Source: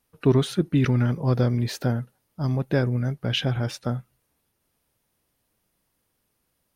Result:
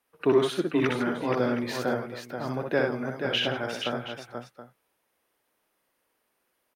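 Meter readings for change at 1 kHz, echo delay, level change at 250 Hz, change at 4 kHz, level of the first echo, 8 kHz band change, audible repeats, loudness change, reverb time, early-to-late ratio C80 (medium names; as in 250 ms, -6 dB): +3.5 dB, 62 ms, -3.5 dB, +0.5 dB, -3.5 dB, -3.5 dB, 4, -3.5 dB, no reverb, no reverb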